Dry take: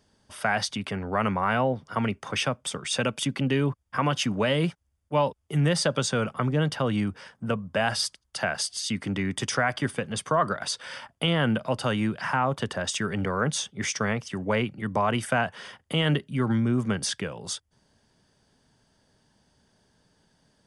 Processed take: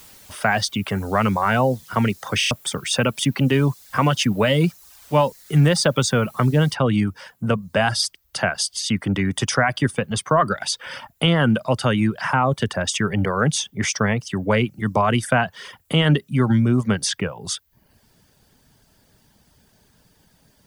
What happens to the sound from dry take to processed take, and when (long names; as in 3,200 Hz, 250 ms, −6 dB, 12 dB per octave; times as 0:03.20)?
0:02.39: stutter in place 0.03 s, 4 plays
0:06.74: noise floor change −52 dB −69 dB
whole clip: reverb reduction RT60 0.55 s; low-shelf EQ 130 Hz +6.5 dB; level +6 dB